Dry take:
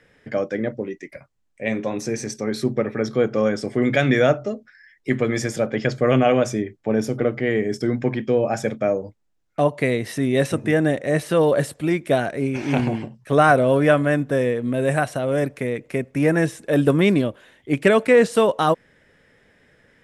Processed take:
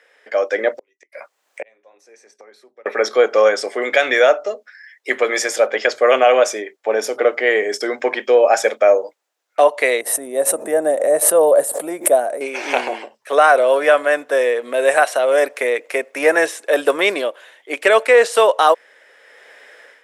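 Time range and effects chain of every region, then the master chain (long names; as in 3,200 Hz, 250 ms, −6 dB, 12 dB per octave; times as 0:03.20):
0:00.78–0:02.86: gate with flip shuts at −24 dBFS, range −39 dB + multiband upward and downward compressor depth 70%
0:10.01–0:12.41: drawn EQ curve 230 Hz 0 dB, 400 Hz −8 dB, 610 Hz −4 dB, 2,400 Hz −23 dB, 5,300 Hz −20 dB, 9,100 Hz −1 dB + background raised ahead of every attack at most 72 dB per second
whole clip: automatic gain control; high-pass filter 490 Hz 24 dB per octave; boost into a limiter +5 dB; level −1 dB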